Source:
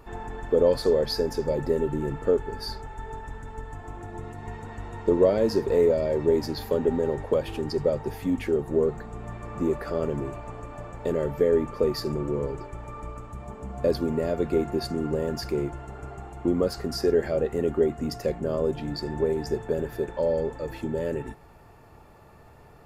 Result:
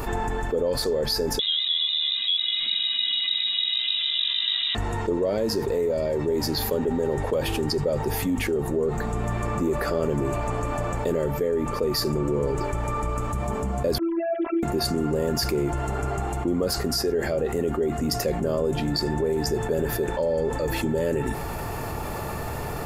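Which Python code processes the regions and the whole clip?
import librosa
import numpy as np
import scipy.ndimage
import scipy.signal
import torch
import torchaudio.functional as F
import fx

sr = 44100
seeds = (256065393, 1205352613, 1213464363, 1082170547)

y = fx.chain(x, sr, fx.freq_invert(carrier_hz=3800),
    fx.peak_eq(hz=66.0, db=-13.5, octaves=2.7), at=(1.39, 4.75))
y = fx.chain(y, sr, fx.sine_speech(),
    fx.robotise(hz=333.0), at=(13.98, 14.63))
y = fx.rider(y, sr, range_db=4, speed_s=0.5)
y = fx.high_shelf(y, sr, hz=6000.0, db=9.5)
y = fx.env_flatten(y, sr, amount_pct=70)
y = y * 10.0 ** (-4.0 / 20.0)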